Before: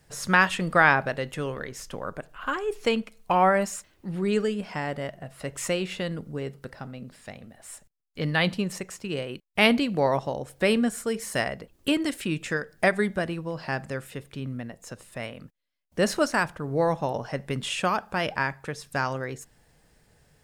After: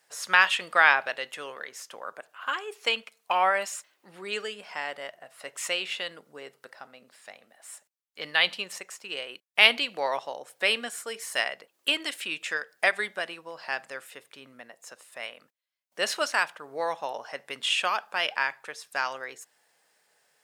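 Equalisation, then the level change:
dynamic equaliser 3,100 Hz, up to +8 dB, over −43 dBFS, Q 1.2
high-pass filter 680 Hz 12 dB per octave
−1.5 dB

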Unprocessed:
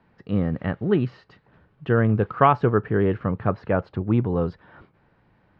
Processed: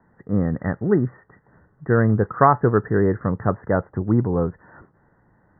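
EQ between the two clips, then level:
Chebyshev low-pass filter 2,000 Hz, order 10
+2.5 dB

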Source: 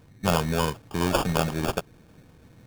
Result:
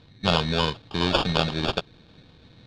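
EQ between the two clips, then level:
low-pass with resonance 3,900 Hz, resonance Q 5.6
0.0 dB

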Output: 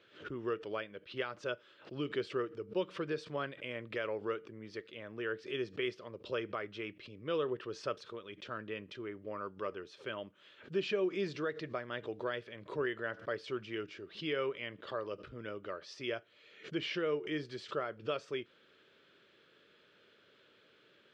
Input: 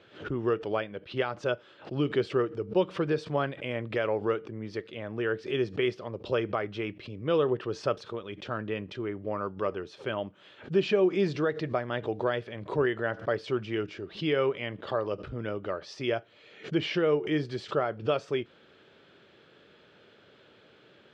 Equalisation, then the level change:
low-shelf EQ 270 Hz −10 dB
parametric band 780 Hz −9 dB 0.55 octaves
−5.0 dB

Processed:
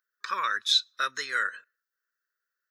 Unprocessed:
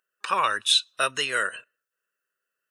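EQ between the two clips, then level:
high-pass filter 770 Hz 6 dB per octave
phaser with its sweep stopped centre 2,800 Hz, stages 6
0.0 dB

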